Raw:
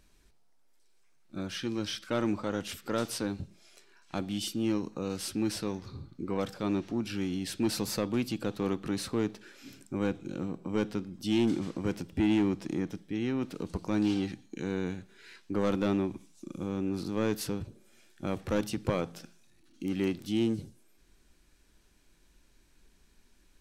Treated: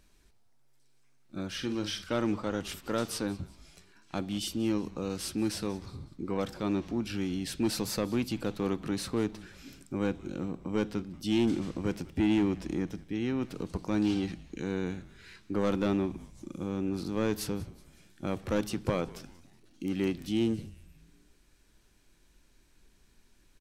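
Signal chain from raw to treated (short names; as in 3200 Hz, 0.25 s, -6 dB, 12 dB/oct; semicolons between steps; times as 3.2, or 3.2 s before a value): 1.52–2.04 doubler 48 ms -9 dB; frequency-shifting echo 0.186 s, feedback 47%, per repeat -130 Hz, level -20 dB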